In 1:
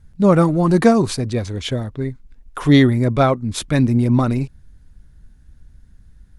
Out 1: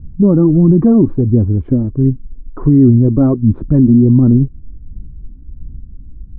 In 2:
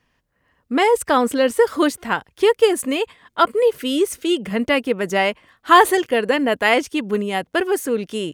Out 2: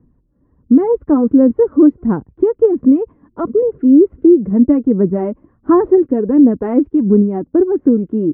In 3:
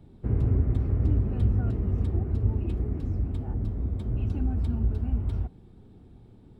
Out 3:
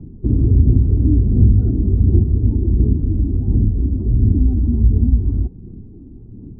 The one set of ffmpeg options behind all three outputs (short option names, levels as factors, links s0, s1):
-filter_complex "[0:a]aphaser=in_gain=1:out_gain=1:delay=3.6:decay=0.42:speed=1.4:type=sinusoidal,lowpass=f=1100:w=0.5412,lowpass=f=1100:w=1.3066,asplit=2[s0][s1];[s1]acompressor=threshold=0.0562:ratio=6,volume=0.891[s2];[s0][s2]amix=inputs=2:normalize=0,lowshelf=f=460:t=q:w=1.5:g=13.5,alimiter=level_in=0.473:limit=0.891:release=50:level=0:latency=1,volume=0.891"